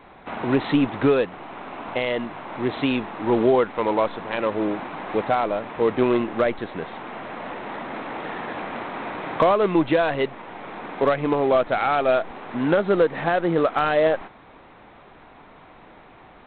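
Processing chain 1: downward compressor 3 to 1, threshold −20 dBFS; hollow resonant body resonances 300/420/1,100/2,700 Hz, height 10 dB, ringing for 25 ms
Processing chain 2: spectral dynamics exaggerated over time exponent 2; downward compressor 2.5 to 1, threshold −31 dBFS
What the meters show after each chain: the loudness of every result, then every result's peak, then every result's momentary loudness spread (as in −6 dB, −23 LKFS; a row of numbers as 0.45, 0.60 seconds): −19.0, −34.0 LKFS; −3.5, −18.5 dBFS; 13, 19 LU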